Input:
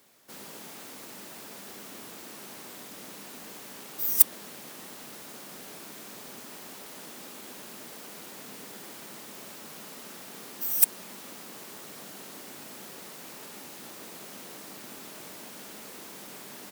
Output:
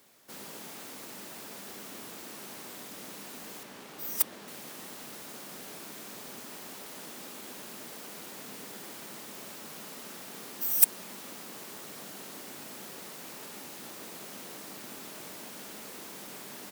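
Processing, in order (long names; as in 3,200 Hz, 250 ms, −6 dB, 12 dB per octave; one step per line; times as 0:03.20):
0:03.63–0:04.48: high-shelf EQ 5,500 Hz −10 dB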